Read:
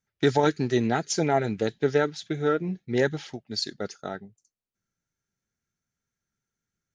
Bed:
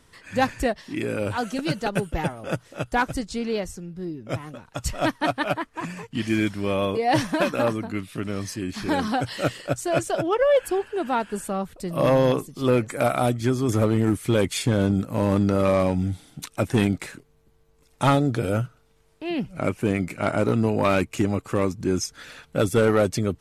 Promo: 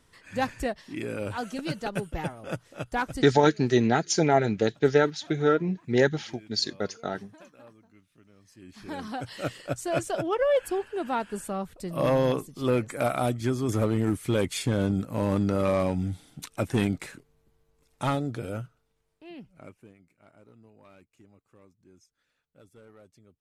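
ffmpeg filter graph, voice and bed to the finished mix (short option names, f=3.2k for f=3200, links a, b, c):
-filter_complex "[0:a]adelay=3000,volume=2dB[a];[1:a]volume=18.5dB,afade=t=out:st=3.16:d=0.3:silence=0.0707946,afade=t=in:st=8.44:d=1.45:silence=0.0595662,afade=t=out:st=17.1:d=2.85:silence=0.0334965[b];[a][b]amix=inputs=2:normalize=0"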